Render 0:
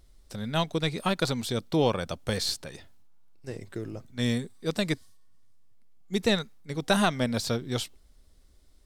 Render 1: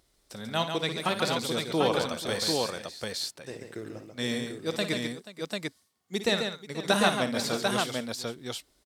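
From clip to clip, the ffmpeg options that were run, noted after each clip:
ffmpeg -i in.wav -filter_complex "[0:a]highpass=frequency=330:poles=1,asplit=2[link_01][link_02];[link_02]aecho=0:1:55|140|202|483|744:0.299|0.473|0.1|0.158|0.668[link_03];[link_01][link_03]amix=inputs=2:normalize=0" out.wav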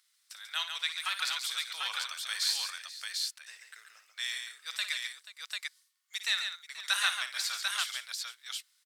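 ffmpeg -i in.wav -af "highpass=frequency=1400:width=0.5412,highpass=frequency=1400:width=1.3066" out.wav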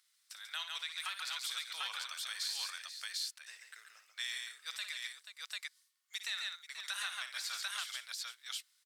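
ffmpeg -i in.wav -af "alimiter=level_in=1.5dB:limit=-24dB:level=0:latency=1:release=175,volume=-1.5dB,volume=-2.5dB" out.wav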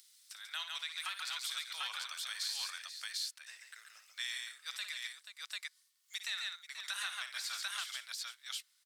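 ffmpeg -i in.wav -filter_complex "[0:a]acrossover=split=1100|2900[link_01][link_02][link_03];[link_01]equalizer=frequency=370:width=2.3:gain=-8.5[link_04];[link_03]acompressor=mode=upward:threshold=-53dB:ratio=2.5[link_05];[link_04][link_02][link_05]amix=inputs=3:normalize=0" out.wav

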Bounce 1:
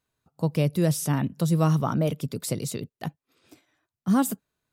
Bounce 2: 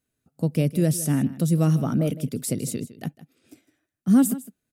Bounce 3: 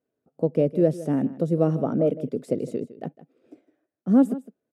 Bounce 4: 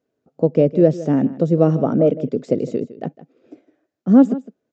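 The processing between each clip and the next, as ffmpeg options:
ffmpeg -i in.wav -af "equalizer=frequency=250:width_type=o:width=0.67:gain=7,equalizer=frequency=1000:width_type=o:width=0.67:gain=-11,equalizer=frequency=4000:width_type=o:width=0.67:gain=-4,equalizer=frequency=10000:width_type=o:width=0.67:gain=5,aecho=1:1:158:0.15" out.wav
ffmpeg -i in.wav -af "bandpass=frequency=500:width_type=q:width=1.8:csg=0,volume=8.5dB" out.wav
ffmpeg -i in.wav -af "aresample=16000,aresample=44100,volume=6.5dB" out.wav

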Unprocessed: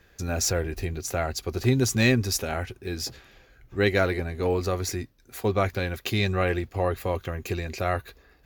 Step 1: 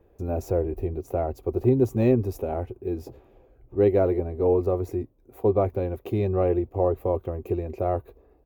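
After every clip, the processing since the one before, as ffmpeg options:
ffmpeg -i in.wav -af "firequalizer=gain_entry='entry(110,0);entry(160,-4);entry(350,6);entry(980,-2);entry(1600,-20);entry(2500,-16);entry(4500,-27);entry(15000,-10)':delay=0.05:min_phase=1" out.wav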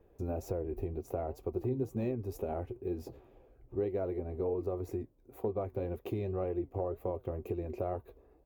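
ffmpeg -i in.wav -af "acompressor=threshold=-27dB:ratio=5,flanger=delay=4:depth=4.6:regen=78:speed=2:shape=triangular" out.wav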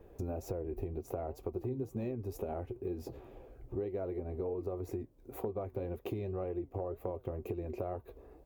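ffmpeg -i in.wav -af "acompressor=threshold=-47dB:ratio=2.5,volume=7.5dB" out.wav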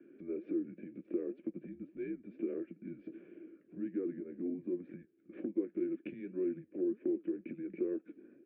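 ffmpeg -i in.wav -filter_complex "[0:a]asplit=3[link_01][link_02][link_03];[link_01]bandpass=frequency=530:width_type=q:width=8,volume=0dB[link_04];[link_02]bandpass=frequency=1840:width_type=q:width=8,volume=-6dB[link_05];[link_03]bandpass=frequency=2480:width_type=q:width=8,volume=-9dB[link_06];[link_04][link_05][link_06]amix=inputs=3:normalize=0,highpass=frequency=460:width_type=q:width=0.5412,highpass=frequency=460:width_type=q:width=1.307,lowpass=frequency=3400:width_type=q:width=0.5176,lowpass=frequency=3400:width_type=q:width=0.7071,lowpass=frequency=3400:width_type=q:width=1.932,afreqshift=-190,volume=10.5dB" out.wav

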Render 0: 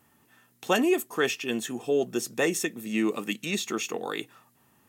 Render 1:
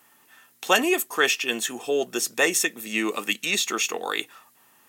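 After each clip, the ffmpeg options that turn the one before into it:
ffmpeg -i in.wav -af "highpass=frequency=940:poles=1,volume=8.5dB" out.wav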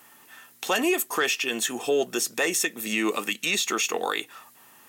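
ffmpeg -i in.wav -af "acontrast=83,alimiter=limit=-13dB:level=0:latency=1:release=234,volume=-2dB" out.wav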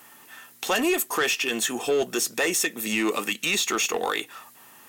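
ffmpeg -i in.wav -af "aeval=exprs='0.188*(cos(1*acos(clip(val(0)/0.188,-1,1)))-cos(1*PI/2))+0.015*(cos(5*acos(clip(val(0)/0.188,-1,1)))-cos(5*PI/2))':channel_layout=same" out.wav

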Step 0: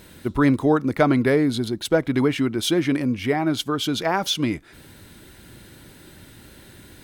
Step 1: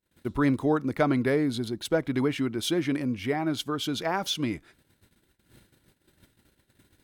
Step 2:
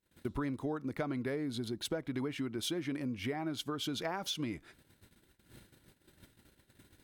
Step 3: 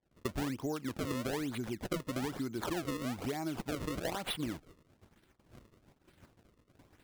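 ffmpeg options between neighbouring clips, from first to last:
ffmpeg -i in.wav -af "agate=range=-36dB:threshold=-43dB:ratio=16:detection=peak,volume=-6dB" out.wav
ffmpeg -i in.wav -af "acompressor=threshold=-34dB:ratio=6" out.wav
ffmpeg -i in.wav -af "acrusher=samples=32:mix=1:aa=0.000001:lfo=1:lforange=51.2:lforate=1.1" out.wav

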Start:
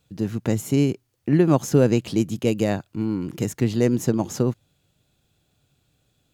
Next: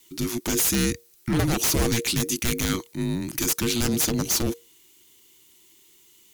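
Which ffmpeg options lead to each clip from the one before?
ffmpeg -i in.wav -af "crystalizer=i=9.5:c=0,aeval=exprs='0.2*(abs(mod(val(0)/0.2+3,4)-2)-1)':channel_layout=same,afreqshift=-470,volume=-2.5dB" out.wav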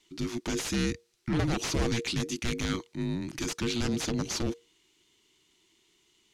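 ffmpeg -i in.wav -af "lowpass=5100,volume=-5dB" out.wav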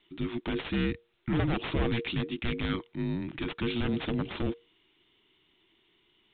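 ffmpeg -i in.wav -ar 8000 -c:a pcm_mulaw out.wav

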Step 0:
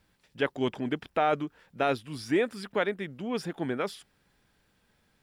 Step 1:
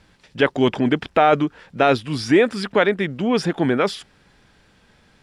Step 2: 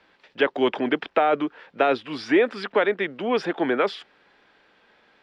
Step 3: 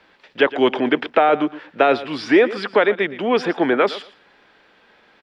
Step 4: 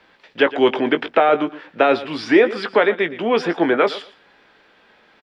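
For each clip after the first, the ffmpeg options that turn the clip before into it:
ffmpeg -i in.wav -filter_complex "[0:a]lowpass=7400,asplit=2[link_01][link_02];[link_02]alimiter=level_in=1.5dB:limit=-24dB:level=0:latency=1:release=22,volume=-1.5dB,volume=-1.5dB[link_03];[link_01][link_03]amix=inputs=2:normalize=0,volume=8.5dB" out.wav
ffmpeg -i in.wav -filter_complex "[0:a]acrossover=split=380[link_01][link_02];[link_02]acompressor=threshold=-17dB:ratio=6[link_03];[link_01][link_03]amix=inputs=2:normalize=0,acrossover=split=290 4200:gain=0.0794 1 0.0708[link_04][link_05][link_06];[link_04][link_05][link_06]amix=inputs=3:normalize=0" out.wav
ffmpeg -i in.wav -af "aecho=1:1:116|232:0.158|0.0285,volume=5dB" out.wav
ffmpeg -i in.wav -filter_complex "[0:a]asplit=2[link_01][link_02];[link_02]adelay=18,volume=-10dB[link_03];[link_01][link_03]amix=inputs=2:normalize=0" out.wav

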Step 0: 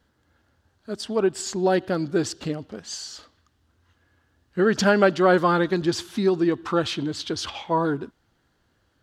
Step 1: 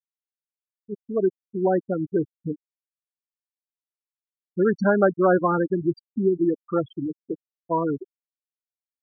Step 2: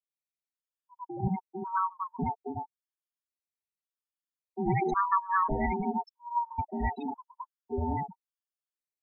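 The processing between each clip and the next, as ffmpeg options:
ffmpeg -i in.wav -af "afftfilt=real='re*gte(hypot(re,im),0.224)':imag='im*gte(hypot(re,im),0.224)':win_size=1024:overlap=0.75,highshelf=frequency=2800:gain=-11.5" out.wav
ffmpeg -i in.wav -filter_complex "[0:a]aeval=exprs='val(0)*sin(2*PI*570*n/s)':channel_layout=same,acrossover=split=210|640[link_01][link_02][link_03];[link_01]adelay=70[link_04];[link_03]adelay=100[link_05];[link_04][link_02][link_05]amix=inputs=3:normalize=0,afftfilt=real='re*gt(sin(2*PI*0.91*pts/sr)*(1-2*mod(floor(b*sr/1024/910),2)),0)':imag='im*gt(sin(2*PI*0.91*pts/sr)*(1-2*mod(floor(b*sr/1024/910),2)),0)':win_size=1024:overlap=0.75" out.wav

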